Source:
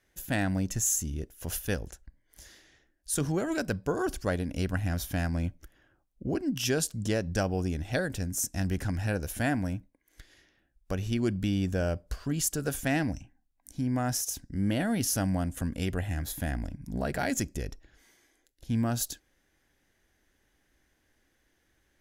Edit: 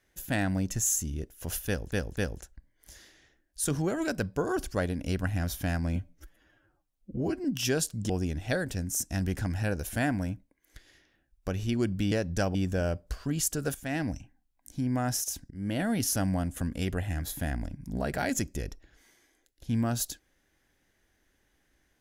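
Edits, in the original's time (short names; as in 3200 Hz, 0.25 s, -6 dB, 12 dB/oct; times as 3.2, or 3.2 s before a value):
1.67–1.92 loop, 3 plays
5.46–6.45 stretch 1.5×
7.1–7.53 move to 11.55
12.75–13.13 fade in, from -13.5 dB
14.51–14.84 fade in, from -15.5 dB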